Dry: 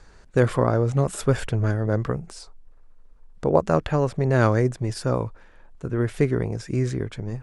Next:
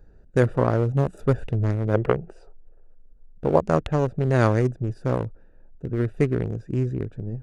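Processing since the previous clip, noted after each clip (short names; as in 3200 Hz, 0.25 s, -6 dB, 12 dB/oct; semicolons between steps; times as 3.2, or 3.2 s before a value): Wiener smoothing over 41 samples; spectral gain 1.94–2.95, 330–3400 Hz +9 dB; high shelf 5800 Hz +5.5 dB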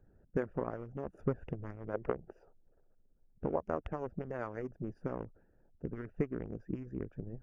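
compressor 5:1, threshold -24 dBFS, peak gain reduction 11 dB; running mean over 11 samples; harmonic-percussive split harmonic -17 dB; gain -3.5 dB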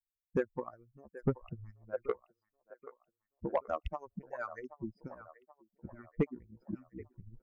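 per-bin expansion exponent 3; band-limited delay 0.779 s, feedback 46%, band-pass 1000 Hz, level -14 dB; soft clip -29 dBFS, distortion -14 dB; gain +9 dB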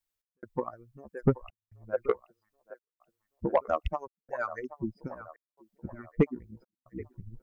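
step gate "x.xxxxx.xxxx" 70 bpm -60 dB; gain +7 dB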